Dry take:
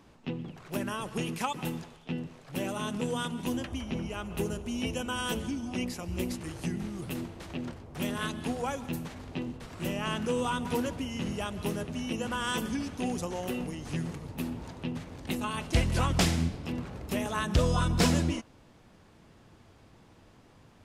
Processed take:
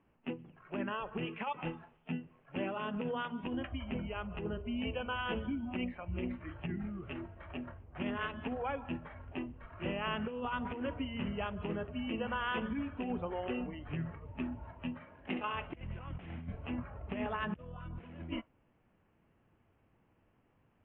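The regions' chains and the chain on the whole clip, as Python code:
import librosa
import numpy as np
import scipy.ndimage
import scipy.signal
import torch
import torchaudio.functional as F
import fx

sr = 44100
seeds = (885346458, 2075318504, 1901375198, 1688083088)

y = fx.chain(x, sr, fx.highpass(hz=150.0, slope=6),
    fx.room_flutter(wall_m=11.5, rt60_s=0.43), at=(14.94, 15.53))
y = scipy.signal.sosfilt(scipy.signal.butter(12, 3000.0, 'lowpass', fs=sr, output='sos'), y)
y = fx.noise_reduce_blind(y, sr, reduce_db=12)
y = fx.over_compress(y, sr, threshold_db=-32.0, ratio=-0.5)
y = y * librosa.db_to_amplitude(-4.0)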